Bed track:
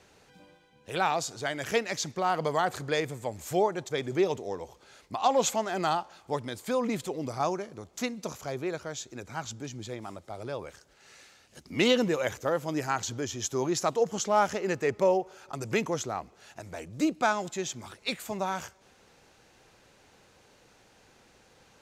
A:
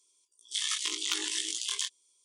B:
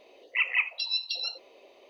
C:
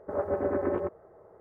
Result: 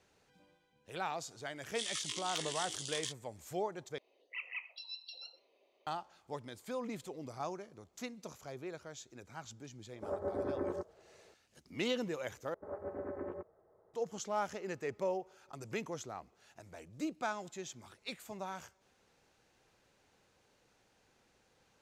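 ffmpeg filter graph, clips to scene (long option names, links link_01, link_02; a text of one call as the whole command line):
ffmpeg -i bed.wav -i cue0.wav -i cue1.wav -i cue2.wav -filter_complex "[3:a]asplit=2[link_01][link_02];[0:a]volume=-11.5dB[link_03];[2:a]aecho=1:1:125:0.075[link_04];[link_01]lowpass=1800[link_05];[link_03]asplit=3[link_06][link_07][link_08];[link_06]atrim=end=3.984[link_09];[link_04]atrim=end=1.89,asetpts=PTS-STARTPTS,volume=-17dB[link_10];[link_07]atrim=start=5.866:end=12.544[link_11];[link_02]atrim=end=1.4,asetpts=PTS-STARTPTS,volume=-13.5dB[link_12];[link_08]atrim=start=13.936[link_13];[1:a]atrim=end=2.24,asetpts=PTS-STARTPTS,volume=-8.5dB,afade=type=in:duration=0.004:curve=hsin,afade=type=out:start_time=2.236:duration=0.004:curve=hsin,adelay=1240[link_14];[link_05]atrim=end=1.4,asetpts=PTS-STARTPTS,volume=-8.5dB,afade=type=in:duration=0.004:curve=hsin,afade=type=out:start_time=1.396:duration=0.004:curve=hsin,adelay=438354S[link_15];[link_09][link_10]acrossfade=duration=0.004:curve1=hsin:curve2=hsin[link_16];[link_16][link_11]acrossfade=duration=0.004:curve1=hsin:curve2=hsin[link_17];[link_17][link_12]acrossfade=duration=0.004:curve1=hsin:curve2=hsin[link_18];[link_18][link_13]acrossfade=duration=0.004:curve1=hsin:curve2=hsin[link_19];[link_19][link_14][link_15]amix=inputs=3:normalize=0" out.wav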